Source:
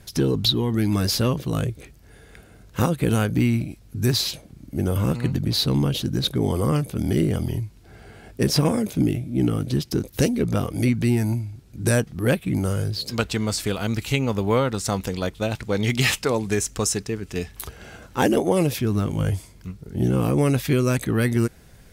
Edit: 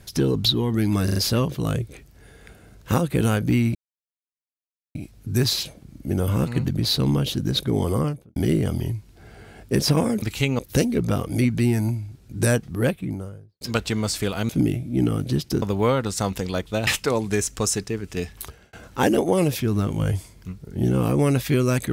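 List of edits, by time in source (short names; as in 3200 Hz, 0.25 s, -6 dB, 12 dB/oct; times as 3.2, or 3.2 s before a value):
1.04 stutter 0.04 s, 4 plays
3.63 insert silence 1.20 s
6.58–7.04 studio fade out
8.9–10.03 swap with 13.93–14.3
12.08–13.05 studio fade out
15.55–16.06 cut
17.57–17.92 fade out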